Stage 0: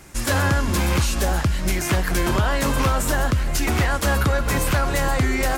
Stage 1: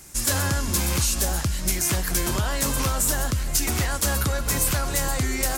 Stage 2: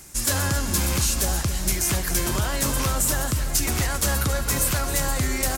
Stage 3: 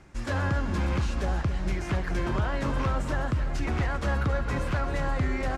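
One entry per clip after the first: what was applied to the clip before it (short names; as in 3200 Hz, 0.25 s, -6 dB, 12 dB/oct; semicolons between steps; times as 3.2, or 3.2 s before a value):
tone controls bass +2 dB, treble +13 dB; gain -6.5 dB
reverse; upward compressor, threshold -27 dBFS; reverse; feedback echo 0.271 s, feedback 55%, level -11.5 dB
LPF 2000 Hz 12 dB/oct; gain -2 dB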